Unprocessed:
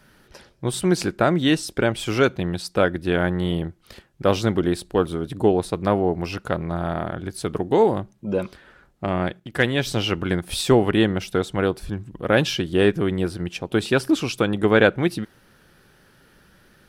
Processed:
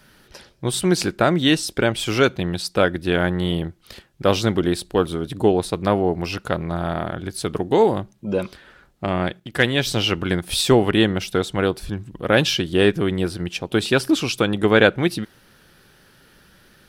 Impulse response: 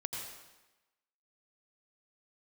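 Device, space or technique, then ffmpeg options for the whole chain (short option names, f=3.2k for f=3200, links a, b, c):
presence and air boost: -af "equalizer=f=3.8k:t=o:w=1.5:g=4,highshelf=f=9.3k:g=5,volume=1dB"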